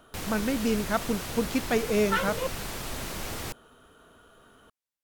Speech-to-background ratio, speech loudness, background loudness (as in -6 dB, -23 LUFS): 6.5 dB, -28.5 LUFS, -35.0 LUFS